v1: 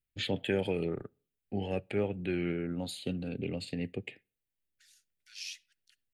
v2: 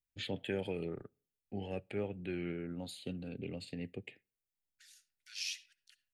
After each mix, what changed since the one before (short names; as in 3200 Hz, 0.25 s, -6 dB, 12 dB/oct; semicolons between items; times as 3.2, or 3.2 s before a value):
first voice -6.5 dB; second voice: send +11.5 dB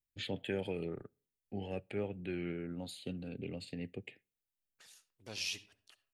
second voice: remove rippled Chebyshev high-pass 1400 Hz, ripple 3 dB